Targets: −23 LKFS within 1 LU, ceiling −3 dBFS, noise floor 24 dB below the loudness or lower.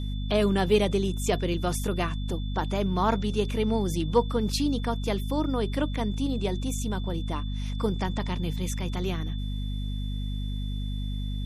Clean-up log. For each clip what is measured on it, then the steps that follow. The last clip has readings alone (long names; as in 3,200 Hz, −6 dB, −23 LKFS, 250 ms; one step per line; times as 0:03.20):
mains hum 50 Hz; hum harmonics up to 250 Hz; level of the hum −28 dBFS; interfering tone 3,500 Hz; level of the tone −45 dBFS; integrated loudness −28.5 LKFS; sample peak −10.5 dBFS; target loudness −23.0 LKFS
→ mains-hum notches 50/100/150/200/250 Hz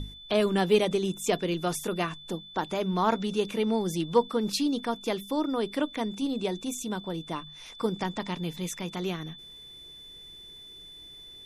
mains hum none found; interfering tone 3,500 Hz; level of the tone −45 dBFS
→ notch filter 3,500 Hz, Q 30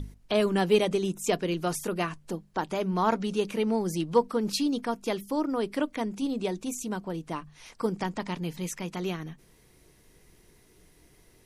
interfering tone none found; integrated loudness −29.5 LKFS; sample peak −11.0 dBFS; target loudness −23.0 LKFS
→ level +6.5 dB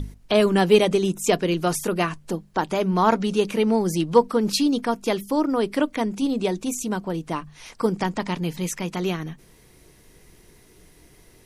integrated loudness −23.0 LKFS; sample peak −4.5 dBFS; background noise floor −54 dBFS